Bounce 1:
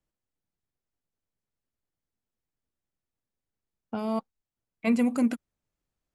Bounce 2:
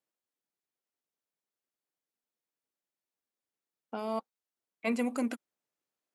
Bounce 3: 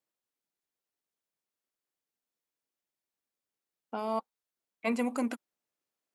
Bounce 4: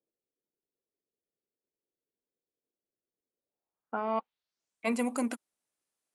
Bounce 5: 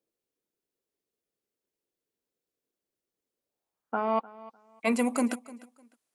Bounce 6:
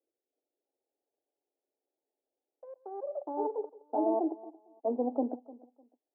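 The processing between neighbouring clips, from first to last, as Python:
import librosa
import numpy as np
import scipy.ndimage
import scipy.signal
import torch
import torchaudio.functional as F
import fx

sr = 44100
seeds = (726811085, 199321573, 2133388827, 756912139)

y1 = scipy.signal.sosfilt(scipy.signal.butter(2, 320.0, 'highpass', fs=sr, output='sos'), x)
y1 = y1 * 10.0 ** (-2.0 / 20.0)
y2 = fx.dynamic_eq(y1, sr, hz=950.0, q=2.1, threshold_db=-49.0, ratio=4.0, max_db=5)
y3 = fx.filter_sweep_lowpass(y2, sr, from_hz=440.0, to_hz=10000.0, start_s=3.36, end_s=4.85, q=2.5)
y4 = fx.echo_feedback(y3, sr, ms=302, feedback_pct=23, wet_db=-19.5)
y4 = y4 * 10.0 ** (4.0 / 20.0)
y5 = fx.echo_pitch(y4, sr, ms=325, semitones=5, count=3, db_per_echo=-3.0)
y5 = scipy.signal.sosfilt(scipy.signal.cheby1(4, 1.0, [260.0, 840.0], 'bandpass', fs=sr, output='sos'), y5)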